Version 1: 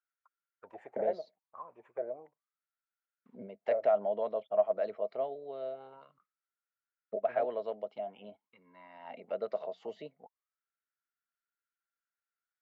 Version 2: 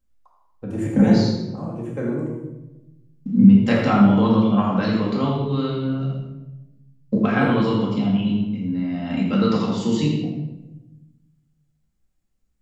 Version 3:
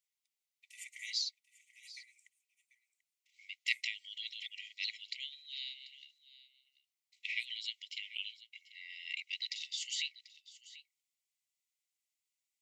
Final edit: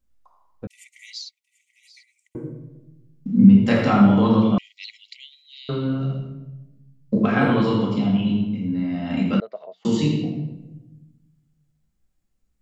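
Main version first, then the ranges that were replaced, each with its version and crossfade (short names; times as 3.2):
2
0.67–2.35 from 3
4.58–5.69 from 3
9.4–9.85 from 1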